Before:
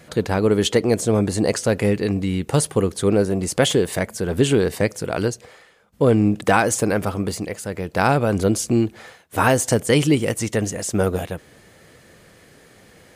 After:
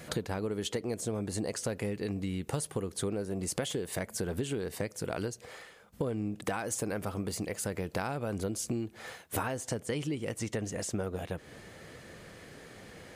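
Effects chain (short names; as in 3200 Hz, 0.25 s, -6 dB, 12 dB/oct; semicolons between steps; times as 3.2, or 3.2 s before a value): compressor 10:1, threshold -31 dBFS, peak gain reduction 19.5 dB; high shelf 8500 Hz +4 dB, from 9.43 s -7.5 dB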